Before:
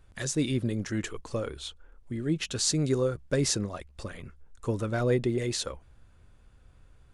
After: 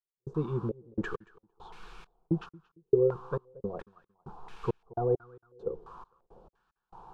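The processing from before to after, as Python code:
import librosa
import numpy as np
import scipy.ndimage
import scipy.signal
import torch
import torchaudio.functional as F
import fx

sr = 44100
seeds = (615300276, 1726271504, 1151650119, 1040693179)

y = fx.rider(x, sr, range_db=4, speed_s=0.5)
y = fx.dmg_noise_colour(y, sr, seeds[0], colour='white', level_db=-43.0)
y = fx.fixed_phaser(y, sr, hz=400.0, stages=8)
y = fx.step_gate(y, sr, bpm=169, pattern='...xxxxx...xx..', floor_db=-60.0, edge_ms=4.5)
y = fx.echo_feedback(y, sr, ms=227, feedback_pct=26, wet_db=-23.0)
y = fx.filter_held_lowpass(y, sr, hz=2.9, low_hz=450.0, high_hz=2100.0)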